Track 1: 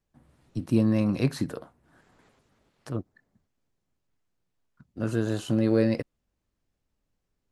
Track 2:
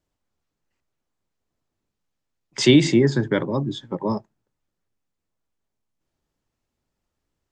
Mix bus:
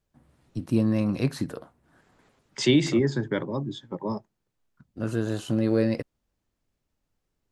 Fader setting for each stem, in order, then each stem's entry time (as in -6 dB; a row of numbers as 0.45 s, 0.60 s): -0.5 dB, -6.0 dB; 0.00 s, 0.00 s